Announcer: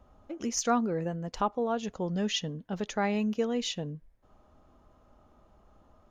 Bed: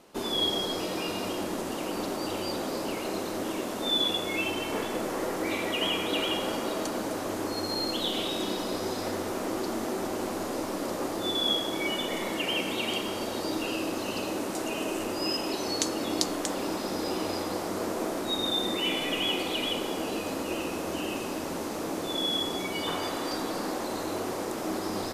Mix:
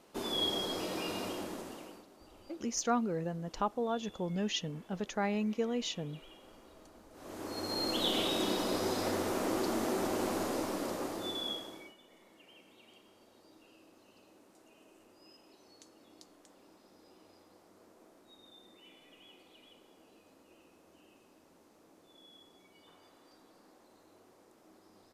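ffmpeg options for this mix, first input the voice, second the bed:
ffmpeg -i stem1.wav -i stem2.wav -filter_complex "[0:a]adelay=2200,volume=-4dB[link_01];[1:a]volume=20dB,afade=type=out:start_time=1.18:duration=0.87:silence=0.0841395,afade=type=in:start_time=7.12:duration=0.97:silence=0.0530884,afade=type=out:start_time=10.37:duration=1.57:silence=0.0375837[link_02];[link_01][link_02]amix=inputs=2:normalize=0" out.wav

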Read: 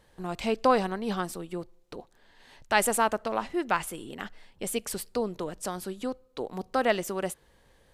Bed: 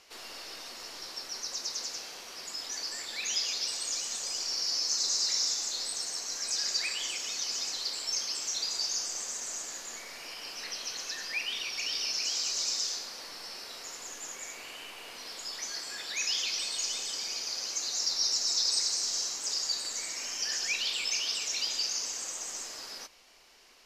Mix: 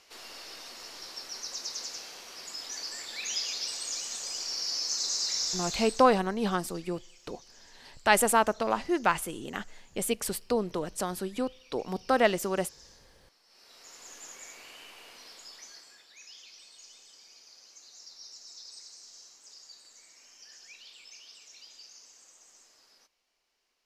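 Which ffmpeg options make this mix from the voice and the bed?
ffmpeg -i stem1.wav -i stem2.wav -filter_complex "[0:a]adelay=5350,volume=1.5dB[link_01];[1:a]volume=16.5dB,afade=type=out:start_time=5.8:duration=0.29:silence=0.0841395,afade=type=in:start_time=13.46:duration=0.69:silence=0.125893,afade=type=out:start_time=14.99:duration=1.08:silence=0.188365[link_02];[link_01][link_02]amix=inputs=2:normalize=0" out.wav

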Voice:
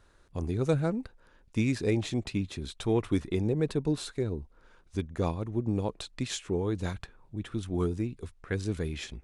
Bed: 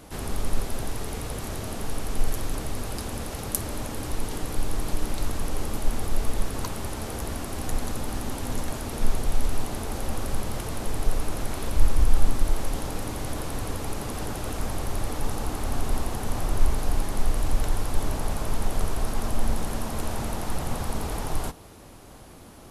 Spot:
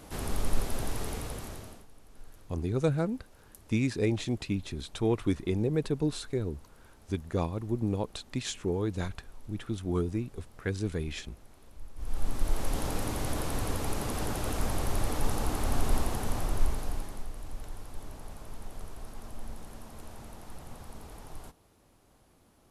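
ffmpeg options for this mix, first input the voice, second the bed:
ffmpeg -i stem1.wav -i stem2.wav -filter_complex "[0:a]adelay=2150,volume=-0.5dB[link_01];[1:a]volume=22.5dB,afade=type=out:start_time=1.06:duration=0.8:silence=0.0668344,afade=type=in:start_time=11.95:duration=0.91:silence=0.0562341,afade=type=out:start_time=15.96:duration=1.32:silence=0.16788[link_02];[link_01][link_02]amix=inputs=2:normalize=0" out.wav

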